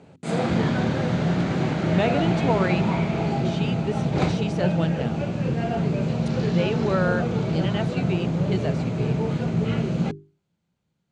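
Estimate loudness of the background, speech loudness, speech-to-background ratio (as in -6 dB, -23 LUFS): -24.5 LUFS, -29.0 LUFS, -4.5 dB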